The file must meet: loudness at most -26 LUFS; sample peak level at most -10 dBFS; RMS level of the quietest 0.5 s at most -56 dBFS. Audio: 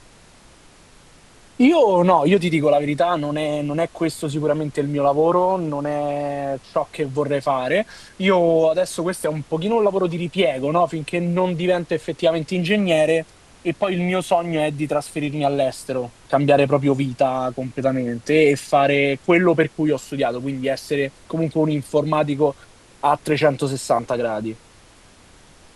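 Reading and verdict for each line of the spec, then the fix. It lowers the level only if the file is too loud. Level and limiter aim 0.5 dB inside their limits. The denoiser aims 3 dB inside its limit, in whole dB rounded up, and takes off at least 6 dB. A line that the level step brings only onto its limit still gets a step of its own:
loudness -20.0 LUFS: fail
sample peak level -2.5 dBFS: fail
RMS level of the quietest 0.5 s -49 dBFS: fail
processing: denoiser 6 dB, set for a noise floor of -49 dBFS; gain -6.5 dB; limiter -10.5 dBFS

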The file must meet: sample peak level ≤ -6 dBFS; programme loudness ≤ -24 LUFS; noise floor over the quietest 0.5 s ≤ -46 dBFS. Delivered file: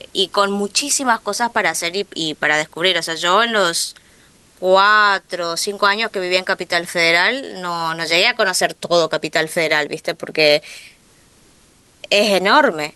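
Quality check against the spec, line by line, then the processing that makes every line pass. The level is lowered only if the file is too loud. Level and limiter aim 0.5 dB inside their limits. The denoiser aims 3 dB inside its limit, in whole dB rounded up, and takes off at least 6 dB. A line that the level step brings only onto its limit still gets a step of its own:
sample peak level -1.5 dBFS: fail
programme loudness -16.5 LUFS: fail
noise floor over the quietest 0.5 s -52 dBFS: OK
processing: gain -8 dB

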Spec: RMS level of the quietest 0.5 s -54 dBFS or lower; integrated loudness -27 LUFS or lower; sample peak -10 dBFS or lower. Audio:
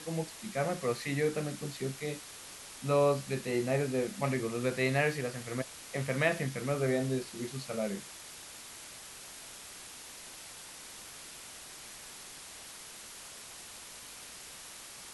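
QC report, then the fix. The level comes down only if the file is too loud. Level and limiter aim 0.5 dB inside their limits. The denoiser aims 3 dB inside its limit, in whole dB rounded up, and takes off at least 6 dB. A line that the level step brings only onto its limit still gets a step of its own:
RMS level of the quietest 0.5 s -48 dBFS: fail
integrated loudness -35.5 LUFS: OK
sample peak -14.5 dBFS: OK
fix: denoiser 9 dB, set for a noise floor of -48 dBFS

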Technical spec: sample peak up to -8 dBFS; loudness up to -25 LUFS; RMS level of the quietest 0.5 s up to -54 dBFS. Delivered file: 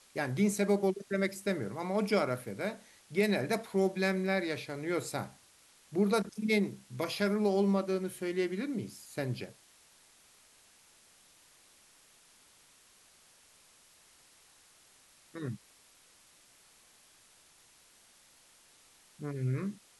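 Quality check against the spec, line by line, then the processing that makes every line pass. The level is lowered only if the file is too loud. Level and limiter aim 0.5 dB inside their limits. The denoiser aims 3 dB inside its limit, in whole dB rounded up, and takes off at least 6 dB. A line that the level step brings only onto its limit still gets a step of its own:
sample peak -15.5 dBFS: OK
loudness -33.0 LUFS: OK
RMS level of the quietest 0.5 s -62 dBFS: OK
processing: none

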